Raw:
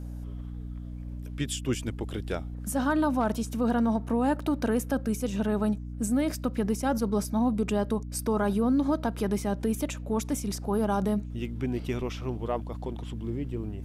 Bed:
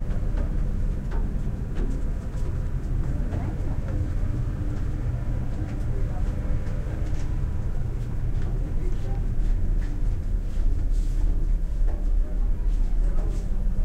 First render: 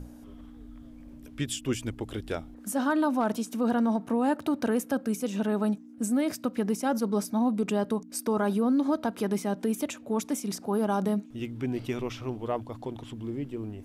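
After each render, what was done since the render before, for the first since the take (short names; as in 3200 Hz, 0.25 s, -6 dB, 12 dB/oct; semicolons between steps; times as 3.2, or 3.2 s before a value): notches 60/120/180 Hz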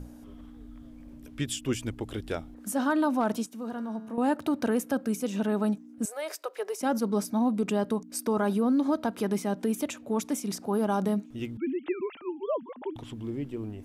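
3.46–4.18 resonator 110 Hz, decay 1.5 s, mix 70%; 6.05–6.81 elliptic high-pass 400 Hz; 11.57–12.96 sine-wave speech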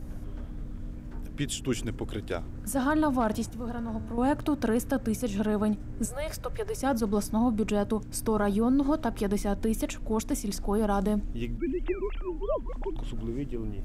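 add bed -13 dB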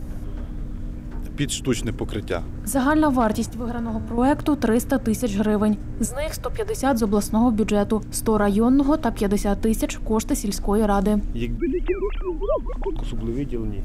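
gain +7 dB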